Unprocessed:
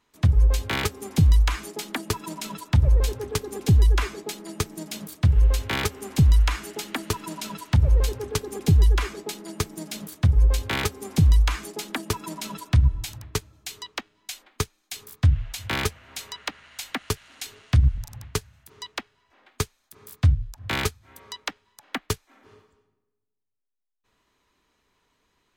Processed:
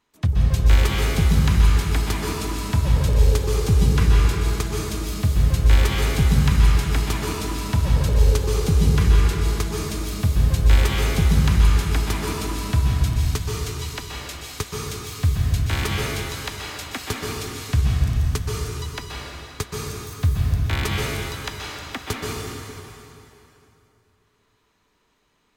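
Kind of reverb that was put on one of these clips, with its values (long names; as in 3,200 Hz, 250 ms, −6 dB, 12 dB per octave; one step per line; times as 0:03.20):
dense smooth reverb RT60 3.1 s, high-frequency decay 0.85×, pre-delay 115 ms, DRR −4 dB
level −2 dB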